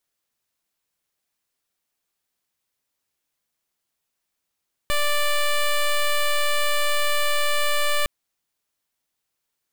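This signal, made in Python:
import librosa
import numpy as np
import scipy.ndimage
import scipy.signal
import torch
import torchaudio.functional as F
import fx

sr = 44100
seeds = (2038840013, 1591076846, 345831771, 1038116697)

y = fx.pulse(sr, length_s=3.16, hz=587.0, level_db=-20.0, duty_pct=10)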